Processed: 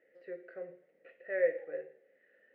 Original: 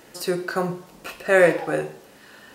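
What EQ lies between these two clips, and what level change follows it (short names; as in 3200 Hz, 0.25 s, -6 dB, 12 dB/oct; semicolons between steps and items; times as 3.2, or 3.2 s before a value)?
double band-pass 1000 Hz, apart 1.9 oct; air absorption 500 m; -9.0 dB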